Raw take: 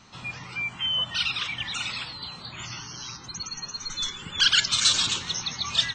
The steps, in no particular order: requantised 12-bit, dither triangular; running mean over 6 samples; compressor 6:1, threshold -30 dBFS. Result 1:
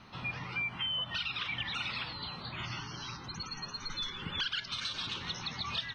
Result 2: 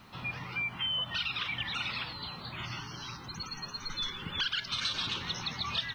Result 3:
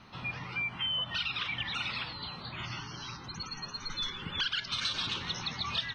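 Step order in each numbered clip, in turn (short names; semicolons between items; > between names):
compressor > requantised > running mean; running mean > compressor > requantised; requantised > running mean > compressor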